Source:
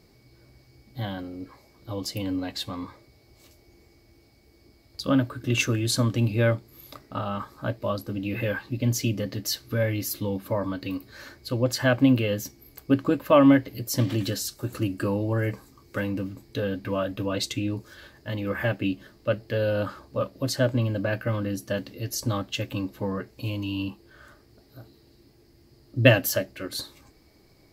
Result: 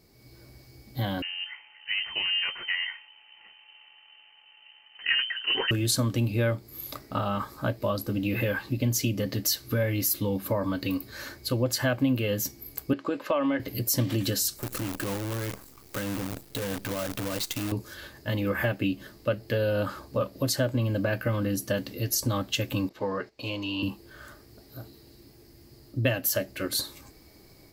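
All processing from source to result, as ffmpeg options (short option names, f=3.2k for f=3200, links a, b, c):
-filter_complex "[0:a]asettb=1/sr,asplit=3[a][b][c];[a]atrim=end=1.224[d];[b]atrim=start=1.22:end=5.71,asetpts=PTS-STARTPTS,afade=t=in:d=0.004:c=qsin,afade=t=out:st=4.486:d=0.004:c=qsin,aeval=exprs='if(lt(val(0),0),0.447*val(0),val(0))':c=same,equalizer=f=1.2k:w=1.9:g=11.5,lowpass=f=2.6k:t=q:w=0.5098,lowpass=f=2.6k:t=q:w=0.6013,lowpass=f=2.6k:t=q:w=0.9,lowpass=f=2.6k:t=q:w=2.563,afreqshift=-3100[e];[c]atrim=start=5.706[f];[d][e]acrossfade=d=0.004:c1=hsin:c2=qsin[g];[g][f]acrossfade=d=0.004:c1=qsin:c2=hsin,asettb=1/sr,asplit=3[h][i][j];[h]atrim=end=12.934[k];[i]atrim=start=12.93:end=13.6,asetpts=PTS-STARTPTS,afade=t=in:d=0.004:c=qsin,afade=t=out:st=0.666:d=0.004:c=qsin,highpass=340,lowpass=5.4k,acompressor=threshold=-22dB:ratio=3:attack=3.2:release=140:knee=1:detection=peak[l];[j]atrim=start=13.596[m];[k][l]acrossfade=d=0.004:c1=hsin:c2=qsin[n];[n][m]acrossfade=d=0.004:c1=qsin:c2=hsin,asettb=1/sr,asplit=3[o][p][q];[o]atrim=end=14.594[r];[p]atrim=start=14.59:end=17.72,asetpts=PTS-STARTPTS,afade=t=in:d=0.004:c=qsin,afade=t=out:st=3.126:d=0.004:c=qsin,acompressor=threshold=-35dB:ratio=3:attack=3.2:release=140:knee=1:detection=peak,acrusher=bits=7:dc=4:mix=0:aa=0.000001[s];[q]atrim=start=17.716[t];[r][s]acrossfade=d=0.004:c1=hsin:c2=qsin[u];[u][t]acrossfade=d=0.004:c1=qsin:c2=hsin,asettb=1/sr,asplit=3[v][w][x];[v]atrim=end=22.894[y];[w]atrim=start=22.89:end=23.83,asetpts=PTS-STARTPTS,afade=t=in:d=0.004:c=qsin,afade=t=out:st=0.936:d=0.004:c=qsin,agate=range=-11dB:threshold=-50dB:ratio=16:release=100:detection=peak,acrossover=split=340 6300:gain=0.251 1 0.112[z][aa][ab];[z][aa][ab]amix=inputs=3:normalize=0[ac];[x]atrim=start=23.826[ad];[y][ac]acrossfade=d=0.004:c1=hsin:c2=qsin[ae];[ae][ad]acrossfade=d=0.004:c1=qsin:c2=hsin,dynaudnorm=f=130:g=3:m=7dB,highshelf=f=8.8k:g=9.5,acompressor=threshold=-21dB:ratio=2.5,volume=-3.5dB"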